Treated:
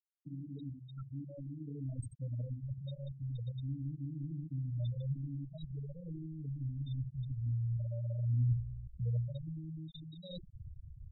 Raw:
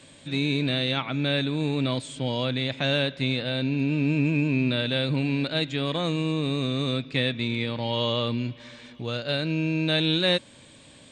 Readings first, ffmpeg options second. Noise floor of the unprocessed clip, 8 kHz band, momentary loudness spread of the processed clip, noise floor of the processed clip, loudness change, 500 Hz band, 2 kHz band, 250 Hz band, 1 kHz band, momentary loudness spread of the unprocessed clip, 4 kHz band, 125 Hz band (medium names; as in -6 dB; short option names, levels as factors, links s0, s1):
-51 dBFS, no reading, 12 LU, -56 dBFS, -14.0 dB, -26.0 dB, under -40 dB, -19.5 dB, under -35 dB, 5 LU, under -30 dB, -7.0 dB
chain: -filter_complex "[0:a]bandreject=f=50:t=h:w=6,bandreject=f=100:t=h:w=6,bandreject=f=150:t=h:w=6,bandreject=f=200:t=h:w=6,bandreject=f=250:t=h:w=6,bandreject=f=300:t=h:w=6,bandreject=f=350:t=h:w=6,bandreject=f=400:t=h:w=6,bandreject=f=450:t=h:w=6,areverse,acompressor=threshold=0.0251:ratio=20,areverse,asubboost=boost=8.5:cutoff=77,crystalizer=i=1:c=0,acrossover=split=120[s0][s1];[s1]acompressor=threshold=0.00282:ratio=3[s2];[s0][s2]amix=inputs=2:normalize=0,asplit=2[s3][s4];[s4]aecho=0:1:67|134|201|268:0.447|0.17|0.0645|0.0245[s5];[s3][s5]amix=inputs=2:normalize=0,afftfilt=real='re*gte(hypot(re,im),0.0224)':imag='im*gte(hypot(re,im),0.0224)':win_size=1024:overlap=0.75,volume=1.78"